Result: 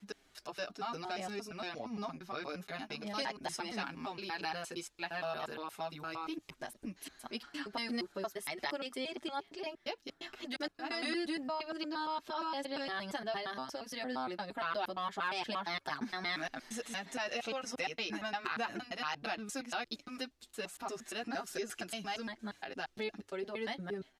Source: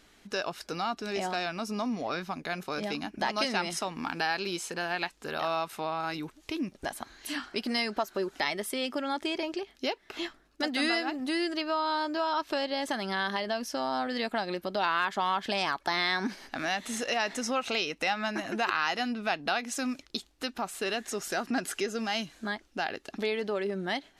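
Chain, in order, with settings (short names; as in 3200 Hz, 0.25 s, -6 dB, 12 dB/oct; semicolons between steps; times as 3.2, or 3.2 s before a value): slices in reverse order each 0.116 s, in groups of 3; notches 50/100 Hz; endless flanger 6.6 ms -1.6 Hz; gain -5 dB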